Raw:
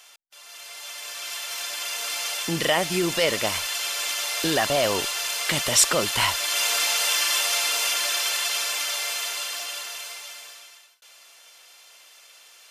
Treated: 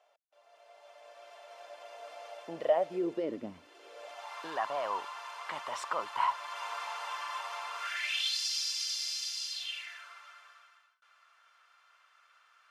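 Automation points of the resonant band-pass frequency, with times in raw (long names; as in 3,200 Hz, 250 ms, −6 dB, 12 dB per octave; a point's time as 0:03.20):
resonant band-pass, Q 4.2
0:02.80 620 Hz
0:03.54 220 Hz
0:04.34 1,000 Hz
0:07.72 1,000 Hz
0:08.40 5,000 Hz
0:09.49 5,000 Hz
0:10.07 1,300 Hz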